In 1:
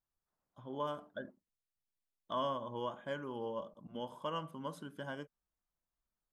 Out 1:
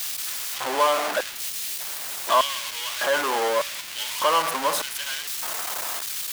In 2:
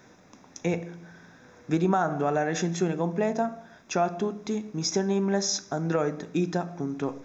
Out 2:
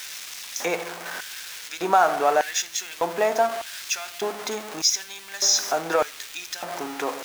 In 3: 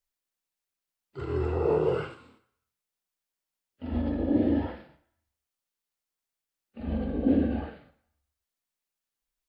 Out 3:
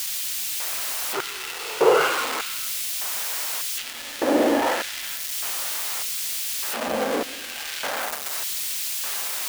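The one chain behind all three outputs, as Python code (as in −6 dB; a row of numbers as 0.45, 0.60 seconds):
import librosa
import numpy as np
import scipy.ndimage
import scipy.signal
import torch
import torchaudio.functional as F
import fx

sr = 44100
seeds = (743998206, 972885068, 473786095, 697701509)

p1 = x + 0.5 * 10.0 ** (-33.0 / 20.0) * np.sign(x)
p2 = fx.filter_lfo_highpass(p1, sr, shape='square', hz=0.83, low_hz=650.0, high_hz=2700.0, q=0.89)
p3 = fx.quant_dither(p2, sr, seeds[0], bits=8, dither='triangular')
p4 = p2 + (p3 * librosa.db_to_amplitude(-6.0))
y = p4 * 10.0 ** (-26 / 20.0) / np.sqrt(np.mean(np.square(p4)))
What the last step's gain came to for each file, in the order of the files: +11.0, +3.5, +11.0 decibels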